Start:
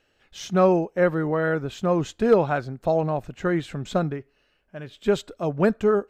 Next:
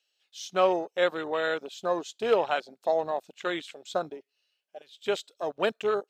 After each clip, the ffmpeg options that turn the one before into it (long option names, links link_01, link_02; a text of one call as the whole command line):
ffmpeg -i in.wav -af "highpass=580,afwtdn=0.0178,highshelf=frequency=2500:width_type=q:width=1.5:gain=12.5" out.wav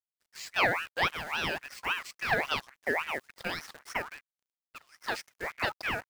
ffmpeg -i in.wav -af "asubboost=boost=9:cutoff=120,acrusher=bits=8:dc=4:mix=0:aa=0.000001,aeval=exprs='val(0)*sin(2*PI*1600*n/s+1600*0.35/3.6*sin(2*PI*3.6*n/s))':channel_layout=same" out.wav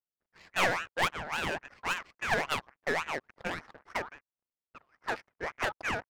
ffmpeg -i in.wav -af "adynamicsmooth=sensitivity=3.5:basefreq=1100,aeval=exprs='clip(val(0),-1,0.0355)':channel_layout=same,volume=1.5dB" out.wav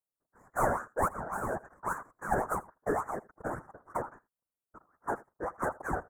ffmpeg -i in.wav -af "afftfilt=real='hypot(re,im)*cos(2*PI*random(0))':imag='hypot(re,im)*sin(2*PI*random(1))':win_size=512:overlap=0.75,asuperstop=centerf=3400:order=8:qfactor=0.54,aecho=1:1:81:0.0794,volume=8dB" out.wav